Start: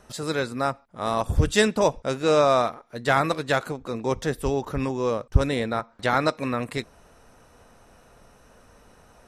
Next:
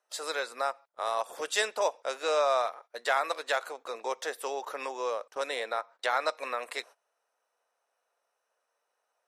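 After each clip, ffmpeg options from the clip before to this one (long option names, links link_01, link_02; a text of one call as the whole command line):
ffmpeg -i in.wav -filter_complex "[0:a]highpass=frequency=520:width=0.5412,highpass=frequency=520:width=1.3066,agate=range=-22dB:threshold=-45dB:ratio=16:detection=peak,asplit=2[link_01][link_02];[link_02]acompressor=threshold=-30dB:ratio=6,volume=2dB[link_03];[link_01][link_03]amix=inputs=2:normalize=0,volume=-8dB" out.wav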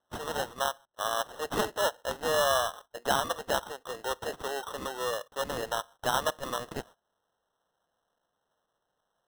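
ffmpeg -i in.wav -af "acrusher=samples=19:mix=1:aa=0.000001" out.wav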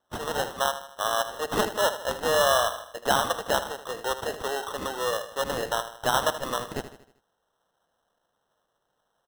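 ffmpeg -i in.wav -af "aecho=1:1:78|156|234|312|390:0.251|0.121|0.0579|0.0278|0.0133,volume=4dB" out.wav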